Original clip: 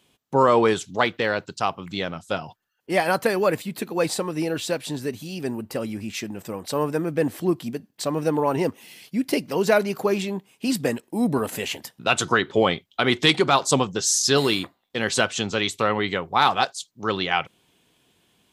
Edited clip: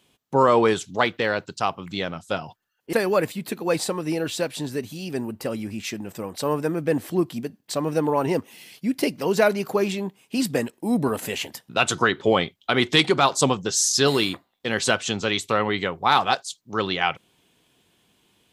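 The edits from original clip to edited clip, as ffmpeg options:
-filter_complex "[0:a]asplit=2[a][b];[a]atrim=end=2.932[c];[b]atrim=start=3.228[d];[c][d]acrossfade=d=0.004:c1=hsin:c2=hsin"

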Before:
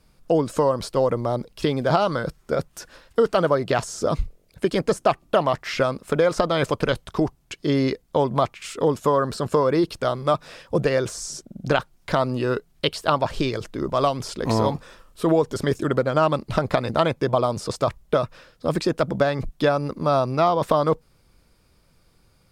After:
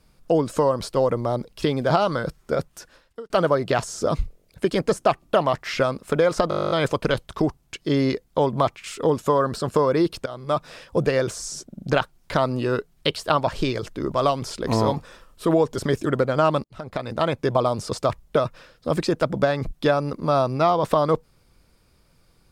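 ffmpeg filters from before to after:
-filter_complex "[0:a]asplit=15[a][b][c][d][e][f][g][h][i][j][k][l][m][n][o];[a]atrim=end=3.3,asetpts=PTS-STARTPTS,afade=t=out:st=2.57:d=0.73[p];[b]atrim=start=3.3:end=6.512,asetpts=PTS-STARTPTS,afade=t=in:d=0.004:c=hsin[q];[c]atrim=start=6.488:end=6.512[r];[d]atrim=start=6.488:end=6.512[s];[e]atrim=start=6.488:end=6.512[t];[f]atrim=start=6.488:end=6.512[u];[g]atrim=start=6.488:end=6.512[v];[h]atrim=start=6.488:end=6.512[w];[i]atrim=start=6.488:end=6.512[x];[j]atrim=start=6.488:end=6.512[y];[k]atrim=start=6.488:end=6.512[z];[l]atrim=start=6.488:end=6.512[aa];[m]atrim=start=6.488:end=10.04,asetpts=PTS-STARTPTS,afade=t=out:st=3.548:d=0.004:c=hsin:silence=0.133352[ab];[n]atrim=start=10.04:end=16.42,asetpts=PTS-STARTPTS,afade=t=in:d=0.38:silence=0.133352,afade=t=out:st=6.376:d=0.004:c=hsin[ac];[o]atrim=start=16.42,asetpts=PTS-STARTPTS,afade=t=in:d=0.8[ad];[p][q]concat=n=2:v=0:a=1[ae];[ae][r]acrossfade=d=0.004:c1=hsin:c2=hsin[af];[af][s]acrossfade=d=0.004:c1=hsin:c2=hsin[ag];[ag][t]acrossfade=d=0.004:c1=hsin:c2=hsin[ah];[ah][u]acrossfade=d=0.004:c1=hsin:c2=hsin[ai];[ai][v]acrossfade=d=0.004:c1=hsin:c2=hsin[aj];[aj][w]acrossfade=d=0.004:c1=hsin:c2=hsin[ak];[ak][x]acrossfade=d=0.004:c1=hsin:c2=hsin[al];[al][y]acrossfade=d=0.004:c1=hsin:c2=hsin[am];[am][z]acrossfade=d=0.004:c1=hsin:c2=hsin[an];[an][aa]acrossfade=d=0.004:c1=hsin:c2=hsin[ao];[ab][ac][ad]concat=n=3:v=0:a=1[ap];[ao][ap]acrossfade=d=0.004:c1=hsin:c2=hsin"

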